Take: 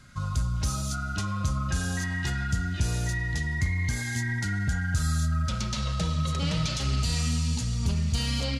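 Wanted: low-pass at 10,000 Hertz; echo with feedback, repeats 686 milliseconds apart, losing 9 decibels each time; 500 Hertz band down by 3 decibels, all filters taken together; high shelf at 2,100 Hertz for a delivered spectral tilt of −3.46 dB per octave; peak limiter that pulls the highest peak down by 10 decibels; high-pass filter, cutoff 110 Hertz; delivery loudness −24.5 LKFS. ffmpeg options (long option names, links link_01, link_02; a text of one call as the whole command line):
ffmpeg -i in.wav -af "highpass=110,lowpass=10000,equalizer=frequency=500:width_type=o:gain=-4,highshelf=frequency=2100:gain=4,alimiter=level_in=1.5dB:limit=-24dB:level=0:latency=1,volume=-1.5dB,aecho=1:1:686|1372|2058|2744:0.355|0.124|0.0435|0.0152,volume=8.5dB" out.wav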